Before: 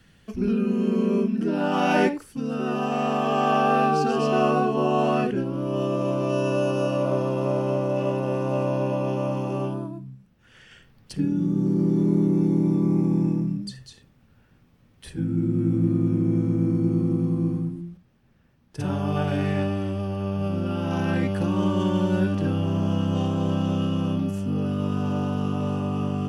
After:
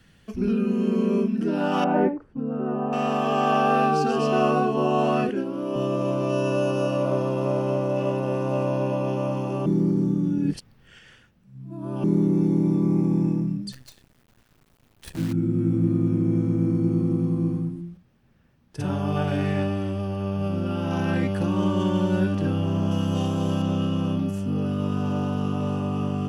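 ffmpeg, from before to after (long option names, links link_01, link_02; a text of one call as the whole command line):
ffmpeg -i in.wav -filter_complex "[0:a]asettb=1/sr,asplit=3[link_01][link_02][link_03];[link_01]atrim=end=1.844[link_04];[link_02]atrim=start=1.84:end=2.93,asetpts=PTS-STARTPTS,afade=type=in:duration=0.004:curve=qsin,afade=type=out:start_time=1.086:duration=0.004:curve=qsin,lowpass=1000[link_05];[link_03]atrim=start=2.926[link_06];[link_04][link_05]acrossfade=duration=0.004:curve1=hsin:curve2=qsin[link_07];[link_07][link_06]acrossfade=duration=0.004:curve1=qsin:curve2=hsin,asettb=1/sr,asplit=3[link_08][link_09][link_10];[link_08]atrim=end=5.294[link_11];[link_09]atrim=start=5.29:end=5.76,asetpts=PTS-STARTPTS,afade=type=in:duration=0.004:curve=qsin,afade=type=out:start_time=0.466:duration=0.004:curve=qsin,highpass=frequency=200:width=0.5412,highpass=frequency=200:width=1.3066[link_12];[link_10]atrim=start=5.756[link_13];[link_11][link_12]acrossfade=duration=0.004:curve1=hsin:curve2=qsin[link_14];[link_14][link_13]acrossfade=duration=0.004:curve1=qsin:curve2=hsin,asettb=1/sr,asplit=3[link_15][link_16][link_17];[link_15]atrim=end=13.724[link_18];[link_16]atrim=start=13.72:end=15.33,asetpts=PTS-STARTPTS,afade=type=in:duration=0.004:curve=qsin,afade=type=out:start_time=1.606:duration=0.004:curve=qsin,acrusher=bits=7:dc=4:mix=0:aa=0.000001[link_19];[link_17]atrim=start=15.326[link_20];[link_18][link_19]acrossfade=duration=0.004:curve1=hsin:curve2=qsin[link_21];[link_21][link_20]acrossfade=duration=0.004:curve1=qsin:curve2=hsin,asettb=1/sr,asplit=3[link_22][link_23][link_24];[link_22]atrim=end=22.914[link_25];[link_23]atrim=start=22.91:end=23.62,asetpts=PTS-STARTPTS,afade=type=in:duration=0.004:curve=qsin,afade=type=out:start_time=0.706:duration=0.004:curve=qsin,aemphasis=mode=production:type=cd[link_26];[link_24]atrim=start=23.616[link_27];[link_25][link_26]acrossfade=duration=0.004:curve1=hsin:curve2=qsin[link_28];[link_28][link_27]acrossfade=duration=0.004:curve1=qsin:curve2=hsin,asplit=3[link_29][link_30][link_31];[link_29]atrim=end=9.662[link_32];[link_30]atrim=start=9.658:end=12.042,asetpts=PTS-STARTPTS,areverse[link_33];[link_31]atrim=start=12.038[link_34];[link_32][link_33]acrossfade=duration=0.004:curve1=hsin:curve2=hsin[link_35];[link_35][link_34]acrossfade=duration=0.004:curve1=hsin:curve2=hsin" out.wav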